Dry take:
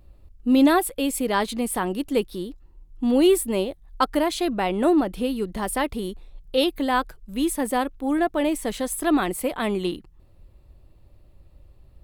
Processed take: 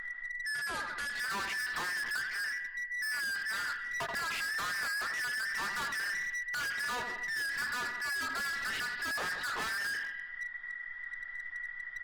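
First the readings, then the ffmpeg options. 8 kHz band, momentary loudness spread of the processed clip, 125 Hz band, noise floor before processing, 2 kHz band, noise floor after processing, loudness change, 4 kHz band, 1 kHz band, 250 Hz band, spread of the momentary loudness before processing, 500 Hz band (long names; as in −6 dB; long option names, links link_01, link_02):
−10.0 dB, 7 LU, −18.0 dB, −53 dBFS, +3.5 dB, −45 dBFS, −11.0 dB, −7.0 dB, −12.5 dB, −32.5 dB, 11 LU, −26.5 dB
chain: -filter_complex "[0:a]afftfilt=real='real(if(between(b,1,1012),(2*floor((b-1)/92)+1)*92-b,b),0)':imag='imag(if(between(b,1,1012),(2*floor((b-1)/92)+1)*92-b,b),0)*if(between(b,1,1012),-1,1)':win_size=2048:overlap=0.75,acompressor=threshold=-24dB:ratio=16,equalizer=frequency=120:width=7.8:gain=-13,aeval=exprs='0.168*(cos(1*acos(clip(val(0)/0.168,-1,1)))-cos(1*PI/2))+0.0237*(cos(5*acos(clip(val(0)/0.168,-1,1)))-cos(5*PI/2))':channel_layout=same,lowshelf=frequency=73:gain=-3.5,bandreject=frequency=60:width_type=h:width=6,bandreject=frequency=120:width_type=h:width=6,bandreject=frequency=180:width_type=h:width=6,bandreject=frequency=240:width_type=h:width=6,bandreject=frequency=300:width_type=h:width=6,asplit=2[link_01][link_02];[link_02]adelay=19,volume=-8dB[link_03];[link_01][link_03]amix=inputs=2:normalize=0,aresample=11025,aresample=44100,acompressor=mode=upward:threshold=-37dB:ratio=2.5,asplit=2[link_04][link_05];[link_05]aecho=0:1:83|166|249|332|415|498:0.2|0.114|0.0648|0.037|0.0211|0.012[link_06];[link_04][link_06]amix=inputs=2:normalize=0,volume=34dB,asoftclip=hard,volume=-34dB" -ar 48000 -c:a libopus -b:a 24k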